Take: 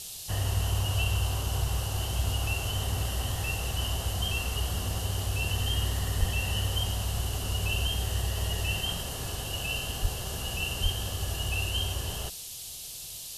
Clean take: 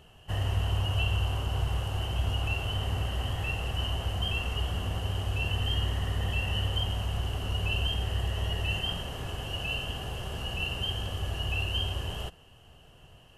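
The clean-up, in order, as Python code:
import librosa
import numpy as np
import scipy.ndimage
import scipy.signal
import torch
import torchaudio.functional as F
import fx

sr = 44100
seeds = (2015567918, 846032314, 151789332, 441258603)

y = fx.highpass(x, sr, hz=140.0, slope=24, at=(6.19, 6.31), fade=0.02)
y = fx.highpass(y, sr, hz=140.0, slope=24, at=(10.01, 10.13), fade=0.02)
y = fx.highpass(y, sr, hz=140.0, slope=24, at=(10.82, 10.94), fade=0.02)
y = fx.noise_reduce(y, sr, print_start_s=12.63, print_end_s=13.13, reduce_db=6.0)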